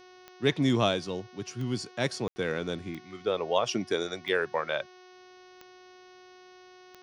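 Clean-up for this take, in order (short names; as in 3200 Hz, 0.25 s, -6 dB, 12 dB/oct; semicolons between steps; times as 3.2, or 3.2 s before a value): de-click; de-hum 366.5 Hz, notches 17; room tone fill 2.28–2.36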